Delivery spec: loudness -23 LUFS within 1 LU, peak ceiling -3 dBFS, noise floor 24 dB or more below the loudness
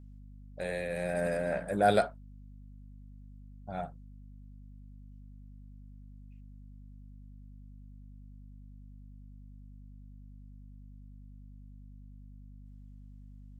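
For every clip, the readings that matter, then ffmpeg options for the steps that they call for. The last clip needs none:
hum 50 Hz; harmonics up to 250 Hz; hum level -48 dBFS; loudness -32.0 LUFS; peak -13.0 dBFS; loudness target -23.0 LUFS
-> -af "bandreject=f=50:t=h:w=6,bandreject=f=100:t=h:w=6,bandreject=f=150:t=h:w=6,bandreject=f=200:t=h:w=6,bandreject=f=250:t=h:w=6"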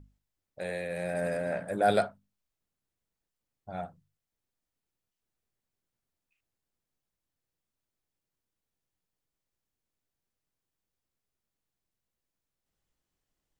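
hum none; loudness -31.5 LUFS; peak -12.5 dBFS; loudness target -23.0 LUFS
-> -af "volume=8.5dB"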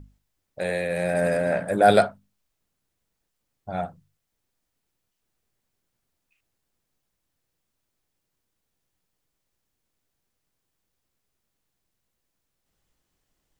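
loudness -23.0 LUFS; peak -4.0 dBFS; noise floor -80 dBFS

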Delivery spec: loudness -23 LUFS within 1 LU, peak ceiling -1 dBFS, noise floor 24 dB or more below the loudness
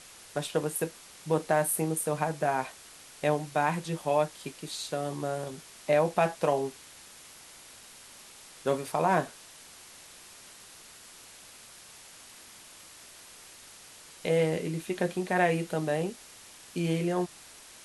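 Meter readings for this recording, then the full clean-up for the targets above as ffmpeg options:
noise floor -51 dBFS; noise floor target -54 dBFS; loudness -30.0 LUFS; peak -12.0 dBFS; loudness target -23.0 LUFS
-> -af "afftdn=nr=6:nf=-51"
-af "volume=7dB"

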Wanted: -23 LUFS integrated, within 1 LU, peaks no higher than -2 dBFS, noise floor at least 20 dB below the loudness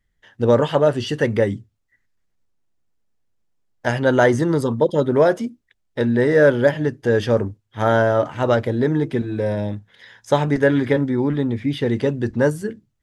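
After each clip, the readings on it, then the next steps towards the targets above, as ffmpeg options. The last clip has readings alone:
loudness -19.5 LUFS; peak -2.0 dBFS; loudness target -23.0 LUFS
-> -af "volume=-3.5dB"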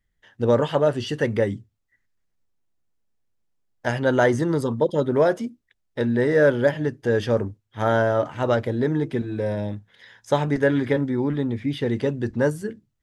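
loudness -23.0 LUFS; peak -5.5 dBFS; noise floor -74 dBFS

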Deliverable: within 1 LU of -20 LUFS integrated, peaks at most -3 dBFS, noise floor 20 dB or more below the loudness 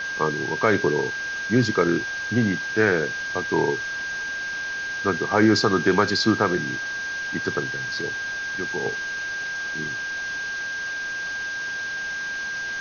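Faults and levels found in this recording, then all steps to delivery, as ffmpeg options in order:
steady tone 1600 Hz; tone level -27 dBFS; noise floor -30 dBFS; noise floor target -44 dBFS; loudness -24.0 LUFS; peak -5.0 dBFS; loudness target -20.0 LUFS
-> -af "bandreject=f=1.6k:w=30"
-af "afftdn=nr=14:nf=-30"
-af "volume=4dB,alimiter=limit=-3dB:level=0:latency=1"

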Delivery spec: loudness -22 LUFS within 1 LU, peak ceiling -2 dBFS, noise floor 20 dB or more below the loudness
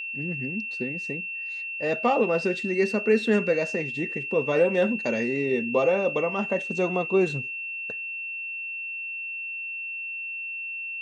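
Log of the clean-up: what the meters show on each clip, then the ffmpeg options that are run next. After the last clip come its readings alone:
steady tone 2700 Hz; tone level -31 dBFS; loudness -26.5 LUFS; peak -10.0 dBFS; loudness target -22.0 LUFS
-> -af "bandreject=f=2.7k:w=30"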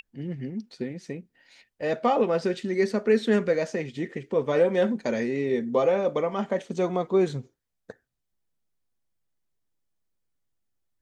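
steady tone none; loudness -26.0 LUFS; peak -10.0 dBFS; loudness target -22.0 LUFS
-> -af "volume=4dB"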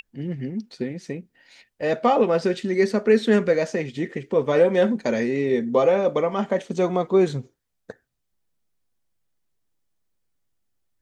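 loudness -22.0 LUFS; peak -6.0 dBFS; noise floor -75 dBFS

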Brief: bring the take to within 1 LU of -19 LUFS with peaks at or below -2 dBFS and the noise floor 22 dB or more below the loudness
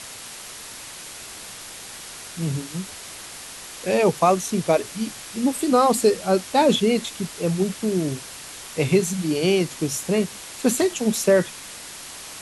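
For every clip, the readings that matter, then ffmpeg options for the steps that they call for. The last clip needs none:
noise floor -39 dBFS; noise floor target -44 dBFS; loudness -22.0 LUFS; peak -6.5 dBFS; loudness target -19.0 LUFS
-> -af "afftdn=nr=6:nf=-39"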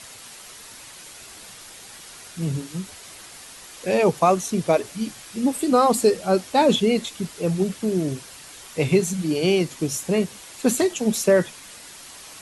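noise floor -43 dBFS; noise floor target -44 dBFS
-> -af "afftdn=nr=6:nf=-43"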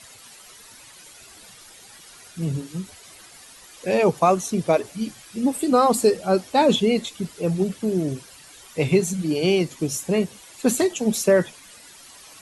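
noise floor -47 dBFS; loudness -22.0 LUFS; peak -6.5 dBFS; loudness target -19.0 LUFS
-> -af "volume=3dB"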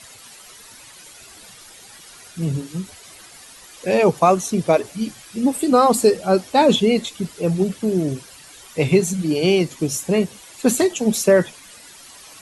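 loudness -19.0 LUFS; peak -3.5 dBFS; noise floor -44 dBFS

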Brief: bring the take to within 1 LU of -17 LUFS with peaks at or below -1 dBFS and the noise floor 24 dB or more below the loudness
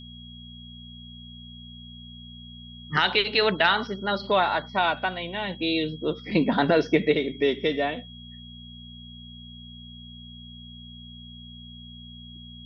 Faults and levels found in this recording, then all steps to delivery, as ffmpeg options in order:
hum 60 Hz; harmonics up to 240 Hz; hum level -42 dBFS; steady tone 3300 Hz; tone level -45 dBFS; loudness -24.5 LUFS; peak -7.5 dBFS; loudness target -17.0 LUFS
-> -af "bandreject=f=60:t=h:w=4,bandreject=f=120:t=h:w=4,bandreject=f=180:t=h:w=4,bandreject=f=240:t=h:w=4"
-af "bandreject=f=3.3k:w=30"
-af "volume=7.5dB,alimiter=limit=-1dB:level=0:latency=1"

